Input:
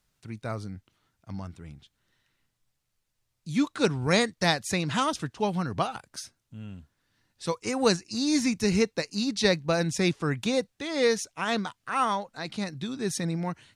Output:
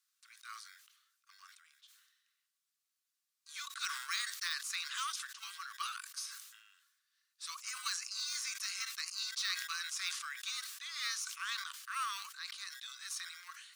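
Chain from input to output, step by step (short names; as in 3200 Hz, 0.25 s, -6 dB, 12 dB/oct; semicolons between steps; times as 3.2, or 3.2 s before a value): de-esser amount 65%; high shelf 5400 Hz +9.5 dB; in parallel at -10 dB: sample-and-hold 25×; on the sum: rippled Chebyshev high-pass 1100 Hz, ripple 3 dB; sustainer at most 53 dB/s; gain -8 dB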